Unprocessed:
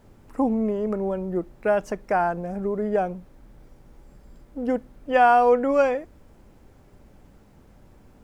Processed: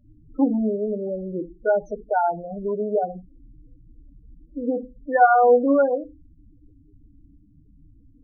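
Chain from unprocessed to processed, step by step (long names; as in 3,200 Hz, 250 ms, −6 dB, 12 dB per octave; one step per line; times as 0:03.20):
feedback delay network reverb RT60 0.31 s, low-frequency decay 1.25×, high-frequency decay 0.6×, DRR 6.5 dB
spectral peaks only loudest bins 8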